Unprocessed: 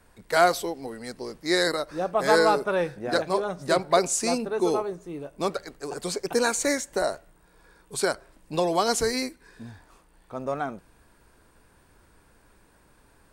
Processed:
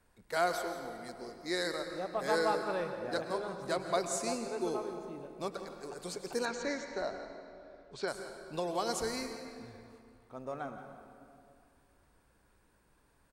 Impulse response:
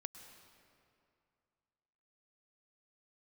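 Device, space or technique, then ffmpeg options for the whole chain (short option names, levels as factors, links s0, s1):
cave: -filter_complex "[0:a]aecho=1:1:171:0.178[s0];[1:a]atrim=start_sample=2205[s1];[s0][s1]afir=irnorm=-1:irlink=0,asettb=1/sr,asplit=3[s2][s3][s4];[s2]atrim=end=6.454[s5];[s3]atrim=start=6.45:end=8.08,asetpts=PTS-STARTPTS,afade=t=in:d=0.004:c=qsin,afade=t=out:st=1.626:d=0.004:c=qsin,lowpass=f=5400:w=0.5412,lowpass=f=5400:w=1.3066[s6];[s4]atrim=start=8.076[s7];[s5][s6]acrossfade=d=0.004:c1=hsin:c2=qsin[s8];[s8][s7]acrossfade=d=0.004:c1=qsin:c2=hsin,volume=0.473"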